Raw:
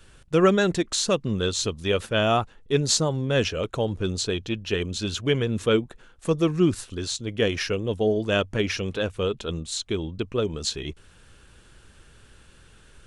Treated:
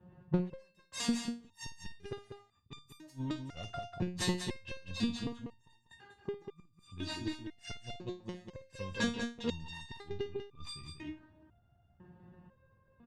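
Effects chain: self-modulated delay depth 0.31 ms; LPF 8400 Hz 12 dB/oct; low-pass opened by the level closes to 630 Hz, open at -22 dBFS; HPF 93 Hz 24 dB/oct; low shelf 430 Hz +7.5 dB; comb 1.1 ms, depth 58%; transient shaper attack +3 dB, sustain +7 dB; flipped gate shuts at -10 dBFS, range -37 dB; on a send: tapped delay 56/193 ms -14/-7 dB; on the sum: stepped resonator 2 Hz 180–1200 Hz; gain +8 dB

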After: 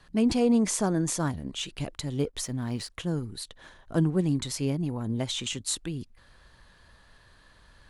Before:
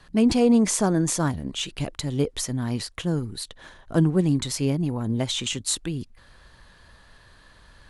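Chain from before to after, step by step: 2.18–2.9 backlash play -49.5 dBFS; gain -4.5 dB

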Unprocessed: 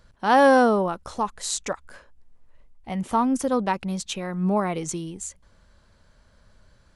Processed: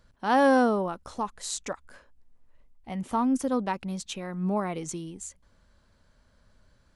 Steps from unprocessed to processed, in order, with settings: bell 260 Hz +4 dB 0.37 oct; gain -5.5 dB

